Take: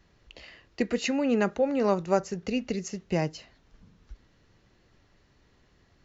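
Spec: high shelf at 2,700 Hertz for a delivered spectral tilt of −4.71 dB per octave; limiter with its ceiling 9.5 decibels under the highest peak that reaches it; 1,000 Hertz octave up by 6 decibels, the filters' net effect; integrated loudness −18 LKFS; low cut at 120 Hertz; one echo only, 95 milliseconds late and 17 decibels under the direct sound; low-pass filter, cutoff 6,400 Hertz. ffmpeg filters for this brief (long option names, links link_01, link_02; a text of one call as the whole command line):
ffmpeg -i in.wav -af "highpass=120,lowpass=6400,equalizer=frequency=1000:width_type=o:gain=7,highshelf=frequency=2700:gain=6,alimiter=limit=-17dB:level=0:latency=1,aecho=1:1:95:0.141,volume=11dB" out.wav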